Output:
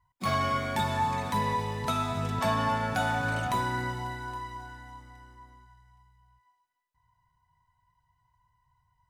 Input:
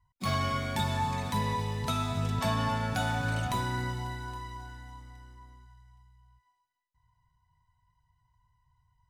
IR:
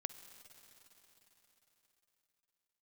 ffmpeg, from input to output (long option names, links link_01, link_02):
-filter_complex "[0:a]lowshelf=frequency=200:gain=-9.5,asplit=2[link_01][link_02];[1:a]atrim=start_sample=2205,atrim=end_sample=3969,lowpass=2600[link_03];[link_02][link_03]afir=irnorm=-1:irlink=0,volume=0dB[link_04];[link_01][link_04]amix=inputs=2:normalize=0"